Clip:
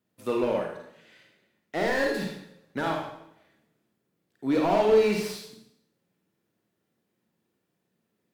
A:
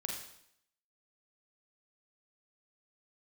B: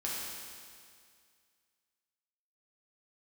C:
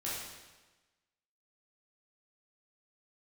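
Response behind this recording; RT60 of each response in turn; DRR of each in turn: A; 0.70 s, 2.1 s, 1.2 s; 0.0 dB, -6.0 dB, -8.5 dB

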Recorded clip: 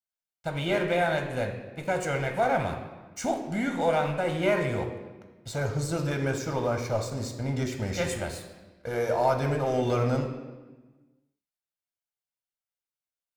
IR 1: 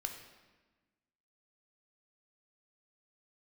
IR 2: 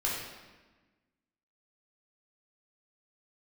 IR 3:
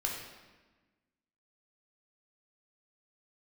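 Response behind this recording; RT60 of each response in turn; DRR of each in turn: 1; 1.3 s, 1.3 s, 1.3 s; 4.0 dB, -5.5 dB, -1.5 dB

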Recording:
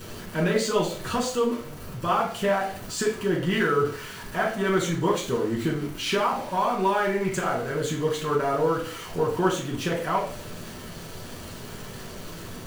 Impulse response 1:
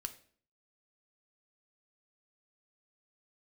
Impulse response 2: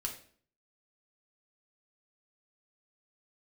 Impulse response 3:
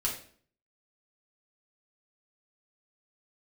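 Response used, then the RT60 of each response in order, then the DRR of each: 3; 0.50 s, 0.50 s, 0.50 s; 8.0 dB, 0.5 dB, -3.5 dB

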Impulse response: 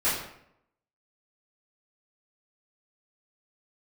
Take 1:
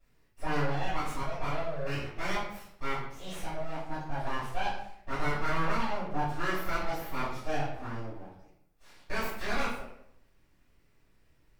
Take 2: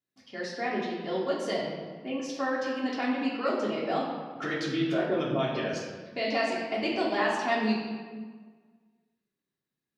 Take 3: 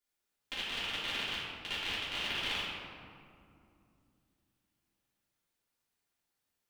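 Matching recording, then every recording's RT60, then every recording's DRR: 1; 0.75 s, 1.6 s, 2.5 s; -14.5 dB, -6.5 dB, -12.0 dB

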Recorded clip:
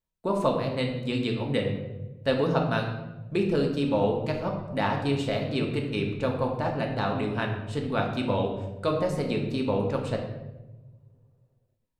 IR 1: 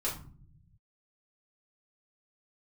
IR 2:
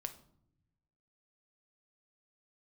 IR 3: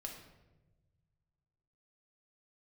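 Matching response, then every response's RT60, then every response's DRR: 3; 0.50 s, no single decay rate, 1.1 s; -7.5 dB, 7.5 dB, 0.5 dB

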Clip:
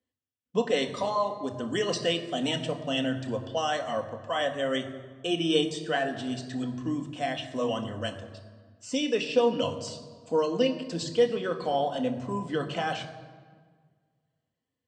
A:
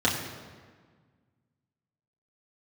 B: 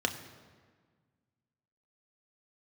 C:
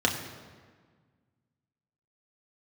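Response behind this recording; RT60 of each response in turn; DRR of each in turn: B; 1.6 s, 1.6 s, 1.6 s; -6.0 dB, 4.5 dB, -0.5 dB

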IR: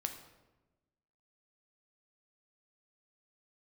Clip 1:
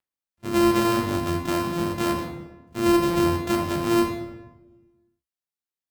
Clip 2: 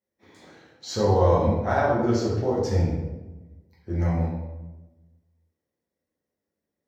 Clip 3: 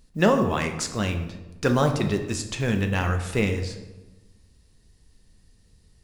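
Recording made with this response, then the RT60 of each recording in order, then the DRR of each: 3; 1.1 s, 1.1 s, 1.1 s; 1.0 dB, -7.0 dB, 5.5 dB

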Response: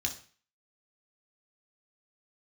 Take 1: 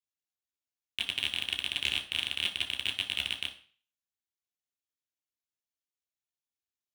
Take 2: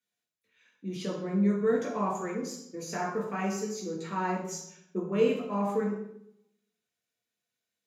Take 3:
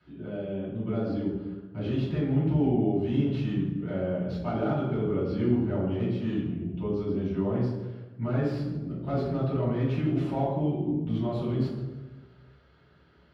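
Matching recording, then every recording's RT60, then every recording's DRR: 1; 0.40 s, 0.75 s, 1.3 s; 1.5 dB, -2.5 dB, -11.0 dB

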